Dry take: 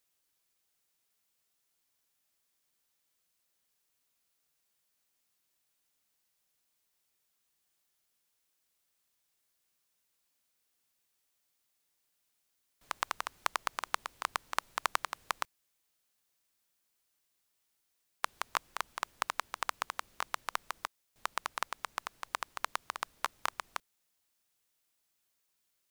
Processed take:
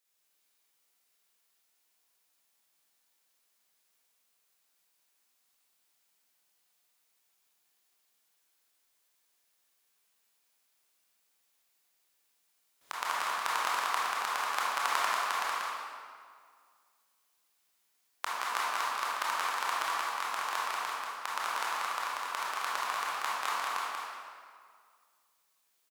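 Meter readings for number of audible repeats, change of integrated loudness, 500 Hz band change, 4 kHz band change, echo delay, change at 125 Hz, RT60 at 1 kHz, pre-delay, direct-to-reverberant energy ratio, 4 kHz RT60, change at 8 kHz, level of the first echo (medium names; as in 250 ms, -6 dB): 1, +5.5 dB, +4.5 dB, +5.0 dB, 187 ms, no reading, 2.0 s, 21 ms, -8.5 dB, 1.4 s, +4.5 dB, -2.5 dB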